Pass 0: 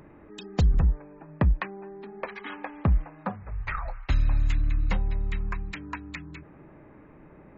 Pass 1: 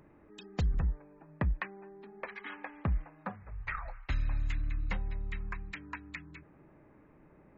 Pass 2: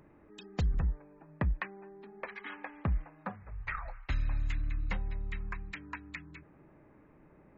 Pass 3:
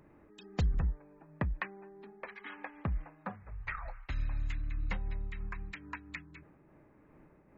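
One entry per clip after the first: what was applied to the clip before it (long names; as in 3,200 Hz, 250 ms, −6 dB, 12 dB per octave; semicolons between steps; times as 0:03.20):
dynamic equaliser 1,900 Hz, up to +6 dB, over −50 dBFS, Q 1.2; level −9 dB
no processing that can be heard
amplitude modulation by smooth noise, depth 55%; level +1.5 dB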